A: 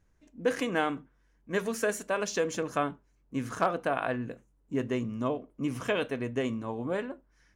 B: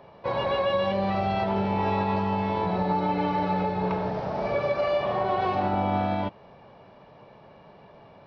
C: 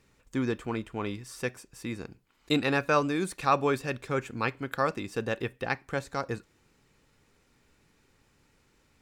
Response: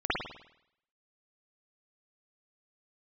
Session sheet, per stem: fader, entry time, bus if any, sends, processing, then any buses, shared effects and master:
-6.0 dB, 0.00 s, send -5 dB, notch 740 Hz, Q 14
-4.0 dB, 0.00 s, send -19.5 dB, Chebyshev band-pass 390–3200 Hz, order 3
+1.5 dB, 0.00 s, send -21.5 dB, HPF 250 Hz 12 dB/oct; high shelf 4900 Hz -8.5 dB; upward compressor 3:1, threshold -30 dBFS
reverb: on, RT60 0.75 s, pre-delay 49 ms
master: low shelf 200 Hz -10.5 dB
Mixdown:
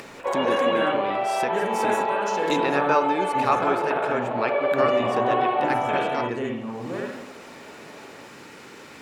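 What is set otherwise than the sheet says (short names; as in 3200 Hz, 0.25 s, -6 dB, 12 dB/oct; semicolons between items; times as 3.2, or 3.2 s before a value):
stem B -4.0 dB -> +2.5 dB; master: missing low shelf 200 Hz -10.5 dB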